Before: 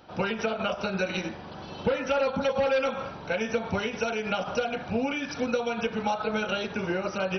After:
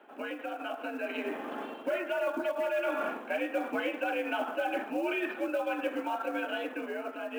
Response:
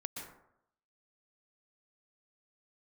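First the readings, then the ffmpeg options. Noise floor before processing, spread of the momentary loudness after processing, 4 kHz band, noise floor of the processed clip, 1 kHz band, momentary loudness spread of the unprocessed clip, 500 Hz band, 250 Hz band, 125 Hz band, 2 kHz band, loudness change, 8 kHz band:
-41 dBFS, 7 LU, -9.0 dB, -45 dBFS, -4.0 dB, 5 LU, -4.5 dB, -4.5 dB, under -25 dB, -3.0 dB, -4.5 dB, no reading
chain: -af "highpass=f=160:t=q:w=0.5412,highpass=f=160:t=q:w=1.307,lowpass=f=2800:t=q:w=0.5176,lowpass=f=2800:t=q:w=0.7071,lowpass=f=2800:t=q:w=1.932,afreqshift=76,acrusher=bits=7:mode=log:mix=0:aa=0.000001,areverse,acompressor=threshold=0.0178:ratio=6,areverse,bandreject=f=970:w=10,dynaudnorm=f=280:g=9:m=2"

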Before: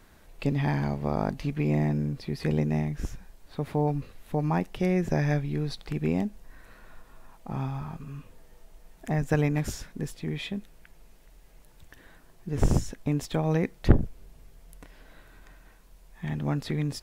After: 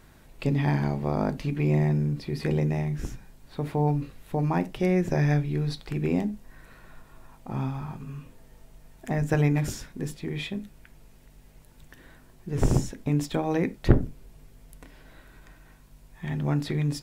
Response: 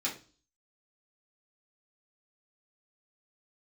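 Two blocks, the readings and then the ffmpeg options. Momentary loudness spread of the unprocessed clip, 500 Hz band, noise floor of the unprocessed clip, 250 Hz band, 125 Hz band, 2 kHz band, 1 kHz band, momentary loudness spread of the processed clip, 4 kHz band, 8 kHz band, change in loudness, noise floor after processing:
12 LU, +1.5 dB, -55 dBFS, +1.5 dB, +2.0 dB, +1.0 dB, +1.0 dB, 14 LU, +1.0 dB, +1.0 dB, +1.5 dB, -54 dBFS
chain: -filter_complex "[0:a]aeval=exprs='val(0)+0.00178*(sin(2*PI*50*n/s)+sin(2*PI*2*50*n/s)/2+sin(2*PI*3*50*n/s)/3+sin(2*PI*4*50*n/s)/4+sin(2*PI*5*50*n/s)/5)':c=same,asplit=2[s0][s1];[1:a]atrim=start_sample=2205,afade=t=out:st=0.15:d=0.01,atrim=end_sample=7056,lowshelf=f=430:g=9[s2];[s1][s2]afir=irnorm=-1:irlink=0,volume=0.168[s3];[s0][s3]amix=inputs=2:normalize=0"

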